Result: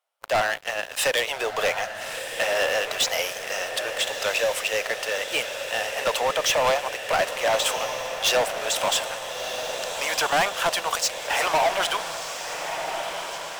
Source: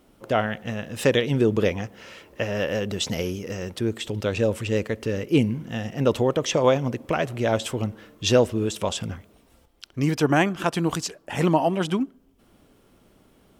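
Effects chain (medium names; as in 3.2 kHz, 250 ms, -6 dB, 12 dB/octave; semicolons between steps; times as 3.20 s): steep high-pass 610 Hz 36 dB/octave; waveshaping leveller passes 5; echo that smears into a reverb 1323 ms, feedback 63%, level -7.5 dB; trim -8 dB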